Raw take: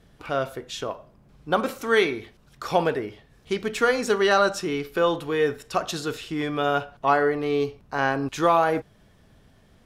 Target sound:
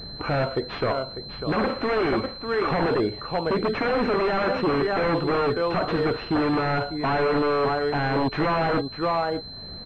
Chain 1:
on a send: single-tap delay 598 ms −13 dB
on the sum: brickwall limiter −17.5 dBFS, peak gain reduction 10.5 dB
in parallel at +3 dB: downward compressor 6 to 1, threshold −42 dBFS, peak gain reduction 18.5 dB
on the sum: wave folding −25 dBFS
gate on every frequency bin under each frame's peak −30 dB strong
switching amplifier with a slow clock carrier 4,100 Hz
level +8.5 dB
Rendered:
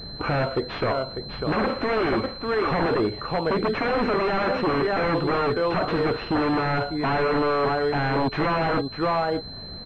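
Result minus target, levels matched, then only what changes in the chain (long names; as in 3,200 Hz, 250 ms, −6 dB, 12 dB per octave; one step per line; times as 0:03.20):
downward compressor: peak gain reduction −9.5 dB
change: downward compressor 6 to 1, threshold −53.5 dBFS, peak gain reduction 28 dB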